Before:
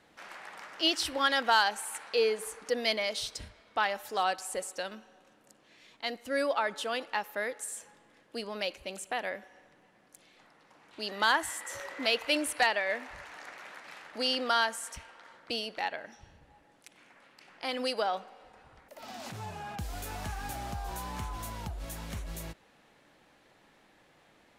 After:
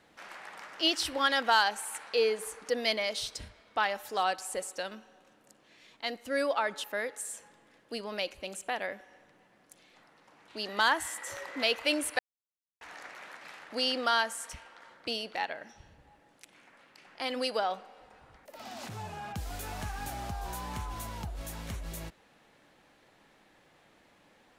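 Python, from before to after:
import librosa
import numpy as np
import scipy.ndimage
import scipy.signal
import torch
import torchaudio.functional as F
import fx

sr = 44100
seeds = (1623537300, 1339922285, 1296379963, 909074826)

y = fx.edit(x, sr, fx.cut(start_s=6.84, length_s=0.43),
    fx.silence(start_s=12.62, length_s=0.62), tone=tone)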